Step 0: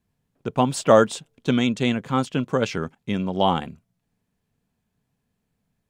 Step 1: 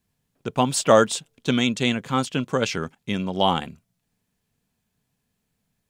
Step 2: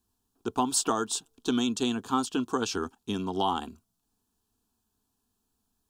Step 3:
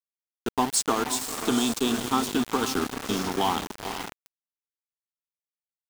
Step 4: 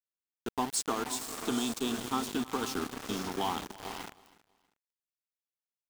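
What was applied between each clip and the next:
high-shelf EQ 2,100 Hz +8 dB; level −1.5 dB
downward compressor 6 to 1, threshold −20 dBFS, peak gain reduction 10 dB; phaser with its sweep stopped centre 560 Hz, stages 6; level +1 dB
feedback delay with all-pass diffusion 488 ms, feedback 42%, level −5.5 dB; centre clipping without the shift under −29.5 dBFS; level +2.5 dB
repeating echo 321 ms, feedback 27%, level −21 dB; level −7.5 dB

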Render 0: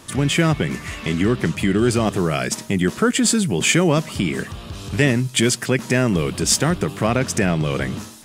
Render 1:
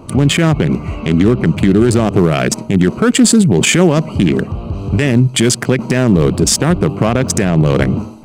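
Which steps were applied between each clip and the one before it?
adaptive Wiener filter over 25 samples
boost into a limiter +13 dB
level −1 dB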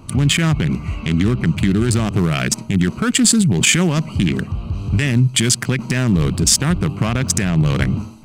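parametric band 500 Hz −12.5 dB 2.1 octaves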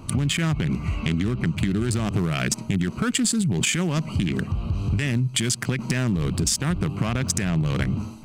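downward compressor, threshold −20 dBFS, peak gain reduction 10.5 dB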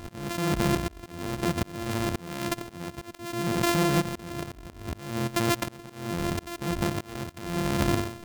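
samples sorted by size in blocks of 128 samples
volume swells 606 ms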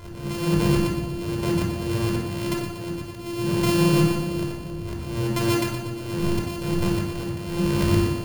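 echo with a time of its own for lows and highs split 730 Hz, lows 377 ms, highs 119 ms, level −12 dB
rectangular room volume 2,500 cubic metres, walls furnished, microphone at 5 metres
level −3.5 dB

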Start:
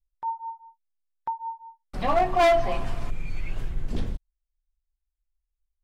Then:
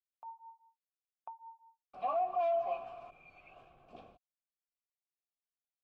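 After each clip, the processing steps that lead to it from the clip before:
formant filter a
brickwall limiter −24 dBFS, peak gain reduction 9.5 dB
level −2 dB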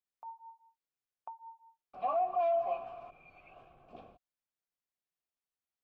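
high-shelf EQ 3,400 Hz −7.5 dB
level +2 dB

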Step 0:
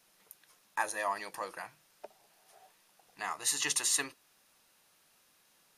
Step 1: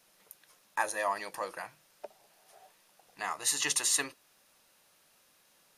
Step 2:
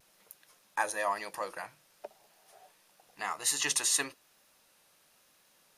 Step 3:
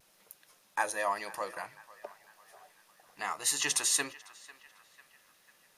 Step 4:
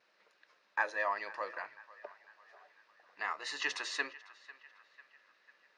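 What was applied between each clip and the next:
parametric band 560 Hz +4 dB 0.34 octaves; level +1.5 dB
pitch vibrato 0.98 Hz 33 cents
feedback echo with a band-pass in the loop 497 ms, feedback 55%, band-pass 1,600 Hz, level −17 dB
loudspeaker in its box 380–4,300 Hz, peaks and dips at 770 Hz −5 dB, 1,700 Hz +4 dB, 3,300 Hz −7 dB; level −1.5 dB

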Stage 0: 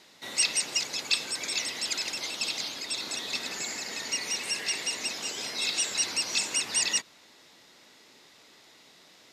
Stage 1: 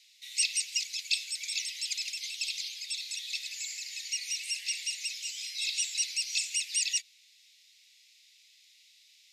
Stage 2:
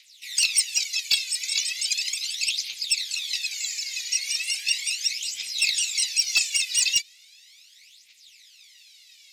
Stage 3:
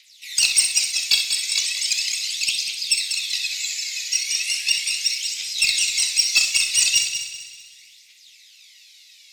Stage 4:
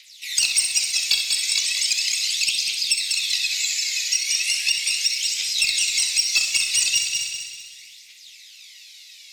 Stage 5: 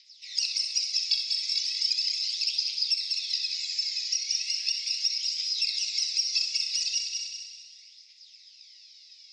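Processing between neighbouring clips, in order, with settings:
elliptic high-pass filter 2,300 Hz, stop band 60 dB; level −2.5 dB
phase shifter 0.37 Hz, delay 2.1 ms, feedback 72%; hard clipping −18 dBFS, distortion −21 dB; level +5.5 dB
harmonic generator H 3 −21 dB, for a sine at −12 dBFS; echo machine with several playback heads 64 ms, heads first and third, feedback 55%, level −9.5 dB; four-comb reverb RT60 0.38 s, combs from 25 ms, DRR 8.5 dB; level +4 dB
downward compressor 2.5 to 1, threshold −24 dBFS, peak gain reduction 8.5 dB; level +4.5 dB
transistor ladder low-pass 5,400 Hz, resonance 80%; level −5 dB

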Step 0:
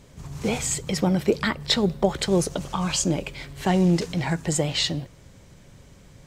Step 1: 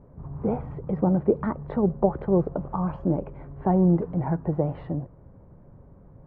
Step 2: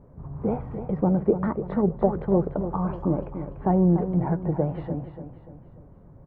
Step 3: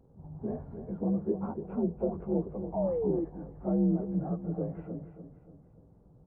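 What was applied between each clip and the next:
low-pass filter 1,100 Hz 24 dB per octave
repeating echo 292 ms, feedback 42%, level −10 dB
partials spread apart or drawn together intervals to 85%; sound drawn into the spectrogram fall, 0:02.76–0:03.25, 320–660 Hz −24 dBFS; level −6.5 dB

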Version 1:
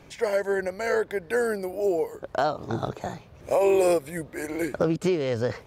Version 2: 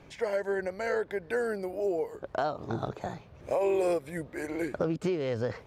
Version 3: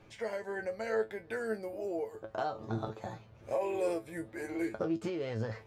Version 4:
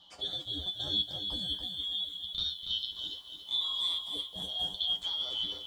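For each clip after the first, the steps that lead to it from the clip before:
high-shelf EQ 6,600 Hz −10 dB; downward compressor 1.5 to 1, threshold −28 dBFS, peak gain reduction 4 dB; level −2.5 dB
tuned comb filter 110 Hz, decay 0.16 s, harmonics all, mix 90%; level +2 dB
band-splitting scrambler in four parts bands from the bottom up 2413; feedback echo at a low word length 284 ms, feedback 35%, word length 10 bits, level −7 dB

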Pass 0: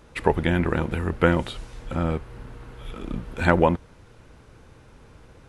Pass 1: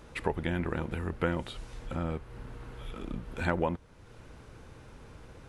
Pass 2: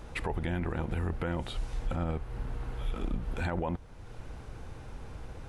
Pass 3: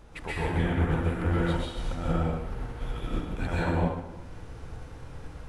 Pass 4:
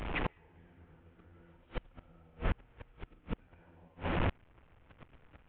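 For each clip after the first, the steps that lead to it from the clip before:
downward compressor 1.5 to 1, threshold −45 dBFS, peak gain reduction 11.5 dB
low-shelf EQ 76 Hz +10 dB; brickwall limiter −26 dBFS, peak gain reduction 11 dB; parametric band 760 Hz +5.5 dB 0.37 octaves; level +2 dB
dense smooth reverb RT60 1.2 s, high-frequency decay 0.85×, pre-delay 110 ms, DRR −7 dB; expander for the loud parts 1.5 to 1, over −33 dBFS
linear delta modulator 16 kbit/s, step −34 dBFS; camcorder AGC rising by 30 dB per second; gate with flip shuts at −20 dBFS, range −34 dB

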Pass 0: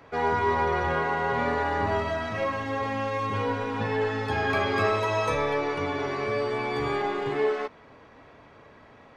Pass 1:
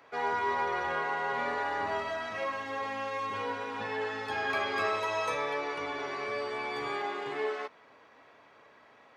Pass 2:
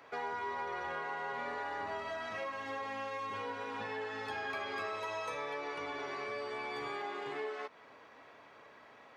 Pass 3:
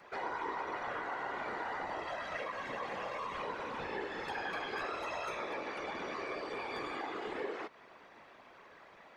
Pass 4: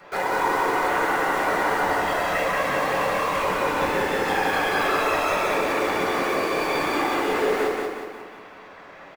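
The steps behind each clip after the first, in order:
high-pass filter 680 Hz 6 dB per octave; level −3 dB
downward compressor 3 to 1, threshold −40 dBFS, peak gain reduction 10.5 dB; level +1 dB
random phases in short frames
in parallel at −6.5 dB: bit reduction 7 bits; on the sum: repeating echo 182 ms, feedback 46%, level −3.5 dB; convolution reverb RT60 0.80 s, pre-delay 5 ms, DRR −2 dB; level +7 dB

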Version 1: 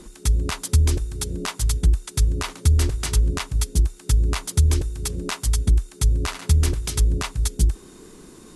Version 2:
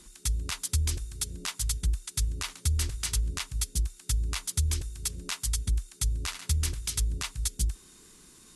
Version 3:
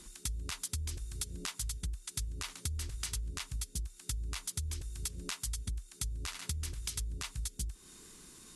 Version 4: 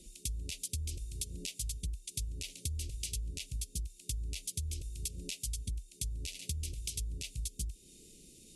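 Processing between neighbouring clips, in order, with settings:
guitar amp tone stack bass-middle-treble 5-5-5; level +3.5 dB
downward compressor, threshold −35 dBFS, peak gain reduction 12.5 dB
Chebyshev band-stop filter 570–2,500 Hz, order 3; one half of a high-frequency compander decoder only

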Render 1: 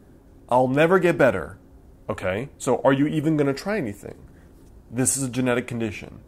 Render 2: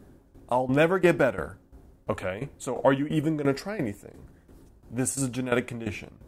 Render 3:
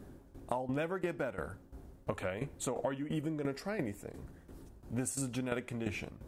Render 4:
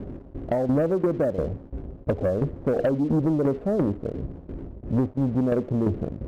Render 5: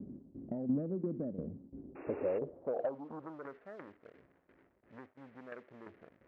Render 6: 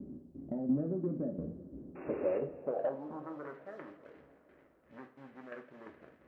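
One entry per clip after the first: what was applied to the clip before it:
shaped tremolo saw down 2.9 Hz, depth 80%
downward compressor 12 to 1, threshold −32 dBFS, peak gain reduction 17.5 dB
Butterworth low-pass 660 Hz 36 dB per octave; leveller curve on the samples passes 2; level +9 dB
sound drawn into the spectrogram noise, 0:01.95–0:02.39, 250–2,800 Hz −30 dBFS; band-pass filter sweep 220 Hz → 1,900 Hz, 0:01.65–0:03.66; level −6 dB
coupled-rooms reverb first 0.3 s, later 4.1 s, from −21 dB, DRR 3 dB

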